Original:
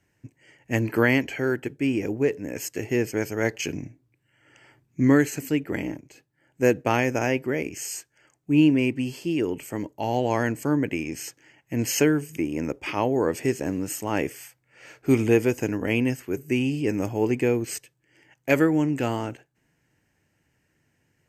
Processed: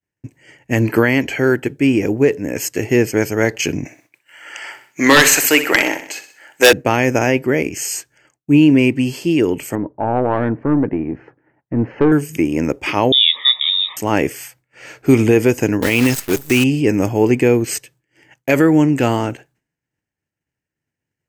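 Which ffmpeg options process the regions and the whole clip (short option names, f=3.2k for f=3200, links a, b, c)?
-filter_complex "[0:a]asettb=1/sr,asplit=3[a][b][c];[a]atrim=end=3.854[d];[b]atrim=start=3.85:end=6.73,asetpts=PTS-STARTPTS,afade=t=in:d=0.004:c=qsin,afade=t=out:st=2.876:d=0.004:c=qsin,highpass=790,aeval=exprs='0.224*sin(PI/2*3.16*val(0)/0.224)':c=same,aecho=1:1:63|126|189|252|315:0.251|0.128|0.0653|0.0333|0.017,atrim=end_sample=127008[e];[c]atrim=start=6.726[f];[d][e]acrossfade=d=0.004:c1=hsin:c2=qsin[g];[g][f]acrossfade=d=0.004:c1=qsin:c2=hsin,asettb=1/sr,asplit=3[h][i][j];[h]atrim=end=9.754[k];[i]atrim=start=9.75:end=12.12,asetpts=PTS-STARTPTS,afade=t=in:d=0.004:c=qsin,afade=t=out:st=2.366:d=0.004:c=qsin,lowpass=f=1.4k:w=0.5412,lowpass=f=1.4k:w=1.3066,aeval=exprs='(tanh(6.31*val(0)+0.25)-tanh(0.25))/6.31':c=same[l];[j]atrim=start=12.116[m];[k][l]acrossfade=d=0.004:c1=hsin:c2=qsin[n];[n][m]acrossfade=d=0.004:c1=qsin:c2=hsin,asettb=1/sr,asplit=3[o][p][q];[o]atrim=end=13.124[r];[p]atrim=start=13.12:end=13.97,asetpts=PTS-STARTPTS,afade=t=in:d=0.004:c=qsin,afade=t=out:st=0.846:d=0.004:c=qsin,asuperstop=centerf=2400:order=8:qfactor=4.8,lowpass=f=3.3k:t=q:w=0.5098,lowpass=f=3.3k:t=q:w=0.6013,lowpass=f=3.3k:t=q:w=0.9,lowpass=f=3.3k:t=q:w=2.563,afreqshift=-3900[s];[q]atrim=start=13.966[t];[r][s]acrossfade=d=0.004:c1=hsin:c2=qsin[u];[u][t]acrossfade=d=0.004:c1=qsin:c2=hsin,asettb=1/sr,asplit=3[v][w][x];[v]atrim=end=15.824[y];[w]atrim=start=15.82:end=16.64,asetpts=PTS-STARTPTS,afade=t=in:d=0.004:c=qsin,afade=t=out:st=0.816:d=0.004:c=qsin,highshelf=f=2.5k:g=10.5,acrusher=bits=6:dc=4:mix=0:aa=0.000001[z];[x]atrim=start=16.636[aa];[y][z]acrossfade=d=0.004:c1=hsin:c2=qsin[ab];[ab][aa]acrossfade=d=0.004:c1=qsin:c2=hsin,agate=range=-33dB:threshold=-54dB:ratio=3:detection=peak,alimiter=level_in=11dB:limit=-1dB:release=50:level=0:latency=1,volume=-1dB"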